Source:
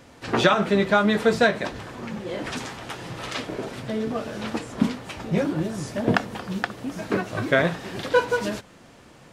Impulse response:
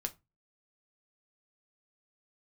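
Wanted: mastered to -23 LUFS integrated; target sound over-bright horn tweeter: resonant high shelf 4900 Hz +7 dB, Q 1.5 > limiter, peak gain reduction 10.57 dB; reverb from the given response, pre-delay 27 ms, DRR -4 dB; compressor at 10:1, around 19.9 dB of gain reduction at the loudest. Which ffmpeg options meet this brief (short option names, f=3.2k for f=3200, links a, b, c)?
-filter_complex "[0:a]acompressor=threshold=-34dB:ratio=10,asplit=2[a][b];[1:a]atrim=start_sample=2205,adelay=27[c];[b][c]afir=irnorm=-1:irlink=0,volume=4dB[d];[a][d]amix=inputs=2:normalize=0,highshelf=f=4.9k:t=q:w=1.5:g=7,volume=12.5dB,alimiter=limit=-13.5dB:level=0:latency=1"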